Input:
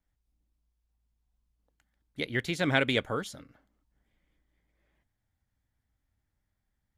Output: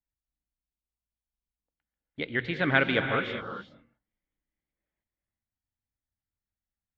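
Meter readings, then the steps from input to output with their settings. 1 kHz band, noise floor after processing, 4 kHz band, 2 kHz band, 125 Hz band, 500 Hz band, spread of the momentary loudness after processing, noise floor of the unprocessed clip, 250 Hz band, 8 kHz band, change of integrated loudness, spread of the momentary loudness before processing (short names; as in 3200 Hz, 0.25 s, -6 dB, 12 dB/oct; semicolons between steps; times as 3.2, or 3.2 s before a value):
+4.0 dB, under -85 dBFS, -1.0 dB, +4.5 dB, +0.5 dB, +1.5 dB, 15 LU, -82 dBFS, +1.0 dB, under -20 dB, +2.0 dB, 15 LU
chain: gate -57 dBFS, range -15 dB; LPF 3500 Hz 24 dB/oct; notches 60/120 Hz; dynamic EQ 1400 Hz, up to +6 dB, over -40 dBFS, Q 1.9; non-linear reverb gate 0.43 s rising, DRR 5.5 dB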